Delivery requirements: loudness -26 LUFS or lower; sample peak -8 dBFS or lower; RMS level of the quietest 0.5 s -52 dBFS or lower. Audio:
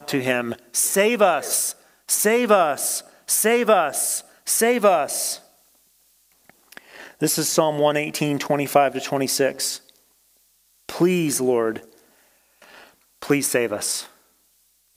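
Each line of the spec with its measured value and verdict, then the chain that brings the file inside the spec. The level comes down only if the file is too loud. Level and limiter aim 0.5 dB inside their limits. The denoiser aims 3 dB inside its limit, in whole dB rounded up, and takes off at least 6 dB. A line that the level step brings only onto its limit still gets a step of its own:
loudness -20.5 LUFS: fail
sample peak -2.0 dBFS: fail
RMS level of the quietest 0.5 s -62 dBFS: pass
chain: trim -6 dB; peak limiter -8.5 dBFS

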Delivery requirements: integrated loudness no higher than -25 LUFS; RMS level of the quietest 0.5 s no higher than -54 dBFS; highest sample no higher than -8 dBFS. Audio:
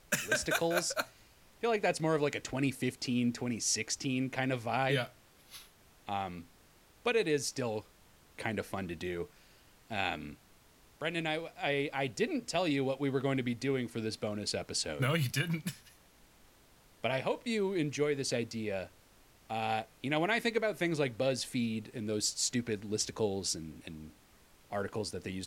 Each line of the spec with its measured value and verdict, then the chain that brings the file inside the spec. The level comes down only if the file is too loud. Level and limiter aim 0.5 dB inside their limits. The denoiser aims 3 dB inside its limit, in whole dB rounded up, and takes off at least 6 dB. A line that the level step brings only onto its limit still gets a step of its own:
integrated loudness -34.0 LUFS: pass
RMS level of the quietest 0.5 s -62 dBFS: pass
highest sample -16.0 dBFS: pass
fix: none needed

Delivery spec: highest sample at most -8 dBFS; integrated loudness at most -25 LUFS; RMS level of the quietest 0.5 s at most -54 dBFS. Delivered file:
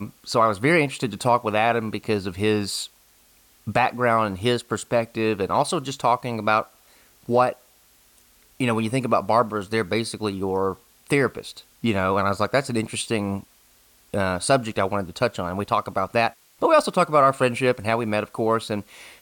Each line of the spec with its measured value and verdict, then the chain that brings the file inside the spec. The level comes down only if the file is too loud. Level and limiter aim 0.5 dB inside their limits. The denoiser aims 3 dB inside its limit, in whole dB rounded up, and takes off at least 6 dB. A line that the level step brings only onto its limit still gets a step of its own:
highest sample -7.0 dBFS: fail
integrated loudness -23.0 LUFS: fail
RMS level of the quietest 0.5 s -57 dBFS: pass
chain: trim -2.5 dB

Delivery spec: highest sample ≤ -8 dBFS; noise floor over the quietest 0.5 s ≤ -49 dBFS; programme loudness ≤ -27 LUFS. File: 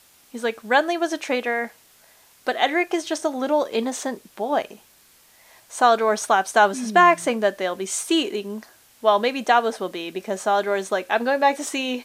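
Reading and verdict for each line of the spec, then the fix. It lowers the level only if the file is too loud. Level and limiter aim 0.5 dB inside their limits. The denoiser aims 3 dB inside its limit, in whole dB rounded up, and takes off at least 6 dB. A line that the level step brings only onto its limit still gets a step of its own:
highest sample -3.5 dBFS: fail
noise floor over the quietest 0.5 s -55 dBFS: pass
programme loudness -22.0 LUFS: fail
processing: trim -5.5 dB

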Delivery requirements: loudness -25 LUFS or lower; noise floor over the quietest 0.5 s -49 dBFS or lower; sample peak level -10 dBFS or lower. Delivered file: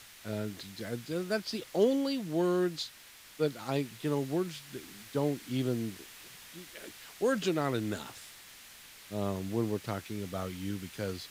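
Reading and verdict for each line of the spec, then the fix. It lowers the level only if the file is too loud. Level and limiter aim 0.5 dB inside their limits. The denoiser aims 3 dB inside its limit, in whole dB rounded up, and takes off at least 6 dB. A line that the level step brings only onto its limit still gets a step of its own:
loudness -33.5 LUFS: pass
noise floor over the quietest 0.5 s -54 dBFS: pass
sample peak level -14.5 dBFS: pass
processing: none needed

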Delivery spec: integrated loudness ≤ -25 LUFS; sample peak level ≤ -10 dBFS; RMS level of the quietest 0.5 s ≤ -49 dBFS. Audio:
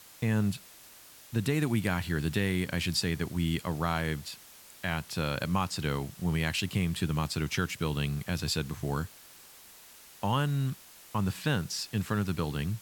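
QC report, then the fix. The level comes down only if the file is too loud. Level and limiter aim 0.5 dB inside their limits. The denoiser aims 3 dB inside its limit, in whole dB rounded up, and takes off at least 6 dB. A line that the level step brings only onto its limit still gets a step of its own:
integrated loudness -31.5 LUFS: pass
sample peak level -13.5 dBFS: pass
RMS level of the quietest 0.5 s -53 dBFS: pass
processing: none needed

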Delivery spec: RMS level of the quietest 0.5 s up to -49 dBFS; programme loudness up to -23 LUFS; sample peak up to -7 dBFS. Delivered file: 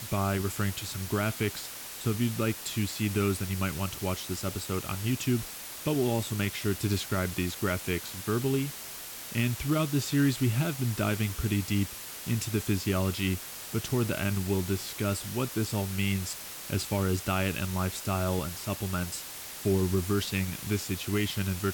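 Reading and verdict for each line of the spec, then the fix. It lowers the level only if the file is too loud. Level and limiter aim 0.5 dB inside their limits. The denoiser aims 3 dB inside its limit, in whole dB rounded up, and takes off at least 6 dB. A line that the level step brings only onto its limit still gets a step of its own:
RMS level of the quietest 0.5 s -42 dBFS: fail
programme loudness -30.5 LUFS: pass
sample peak -14.5 dBFS: pass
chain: noise reduction 10 dB, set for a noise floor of -42 dBFS

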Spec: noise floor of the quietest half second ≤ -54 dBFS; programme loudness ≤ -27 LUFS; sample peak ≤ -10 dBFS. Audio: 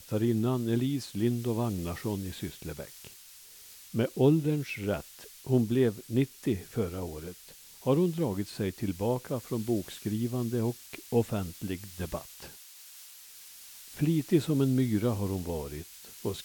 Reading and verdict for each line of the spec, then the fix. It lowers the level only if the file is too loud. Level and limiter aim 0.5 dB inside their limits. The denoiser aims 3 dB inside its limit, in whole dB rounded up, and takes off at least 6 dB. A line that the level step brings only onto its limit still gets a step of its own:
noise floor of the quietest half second -52 dBFS: fail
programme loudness -30.5 LUFS: pass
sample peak -12.0 dBFS: pass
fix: noise reduction 6 dB, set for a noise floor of -52 dBFS

